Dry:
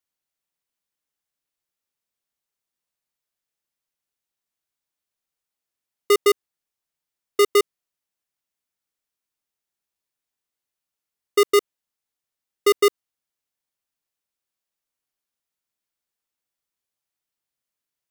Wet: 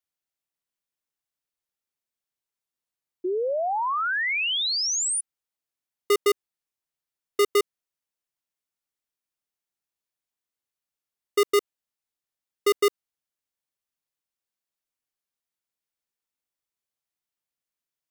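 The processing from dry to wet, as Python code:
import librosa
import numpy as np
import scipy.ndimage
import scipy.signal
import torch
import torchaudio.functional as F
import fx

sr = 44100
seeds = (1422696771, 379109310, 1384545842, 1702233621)

y = fx.spec_paint(x, sr, seeds[0], shape='rise', start_s=3.24, length_s=1.97, low_hz=350.0, high_hz=9900.0, level_db=-21.0)
y = F.gain(torch.from_numpy(y), -4.5).numpy()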